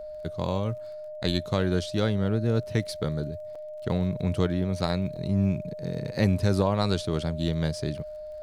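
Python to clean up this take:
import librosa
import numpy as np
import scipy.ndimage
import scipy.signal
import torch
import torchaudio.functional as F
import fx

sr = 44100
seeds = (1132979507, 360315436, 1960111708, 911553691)

y = fx.fix_declick_ar(x, sr, threshold=6.5)
y = fx.notch(y, sr, hz=610.0, q=30.0)
y = fx.fix_interpolate(y, sr, at_s=(3.55, 5.16), length_ms=4.7)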